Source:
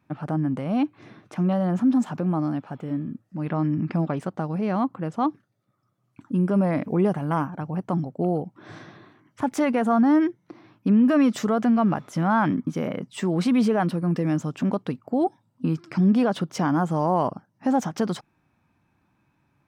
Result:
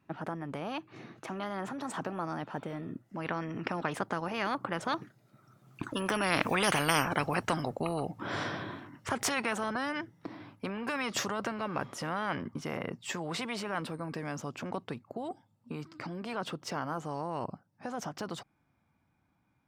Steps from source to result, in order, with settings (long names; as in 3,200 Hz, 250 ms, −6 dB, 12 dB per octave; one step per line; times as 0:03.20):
source passing by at 0:06.86, 21 m/s, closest 7.9 metres
every bin compressed towards the loudest bin 4 to 1
level +4 dB